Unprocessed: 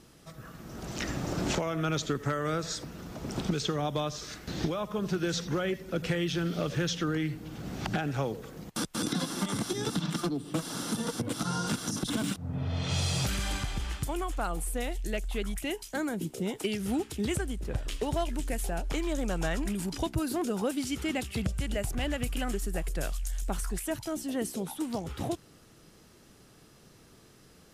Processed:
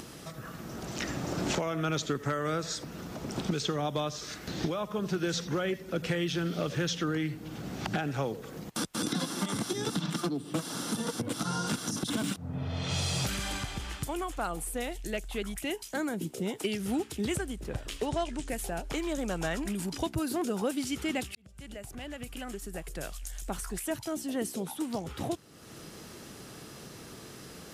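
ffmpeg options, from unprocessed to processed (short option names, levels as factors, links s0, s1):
-filter_complex "[0:a]asettb=1/sr,asplit=3[s0][s1][s2];[s0]atrim=end=18.064[s3];[s1]atrim=start=18.06:end=18.49,asetpts=PTS-STARTPTS,afade=t=in:d=0.004:c=qsin,afade=t=out:st=0.426:d=0.004:c=qsin,lowpass=f=8900:w=0.5412,lowpass=f=8900:w=1.3066[s4];[s2]atrim=start=18.486[s5];[s3][s4]acrossfade=d=0.004:c1=hsin:c2=qsin[s6];[s6][s5]acrossfade=d=0.004:c1=qsin:c2=hsin,asplit=2[s7][s8];[s7]atrim=end=21.35,asetpts=PTS-STARTPTS,afade=t=out:st=21.346:d=0.004:c=hsin[s9];[s8]atrim=start=21.35,asetpts=PTS-STARTPTS,afade=t=in:d=2.43[s10];[s9][s10]concat=n=2:v=0:a=1,highpass=f=100:p=1,acompressor=mode=upward:threshold=0.0178:ratio=2.5"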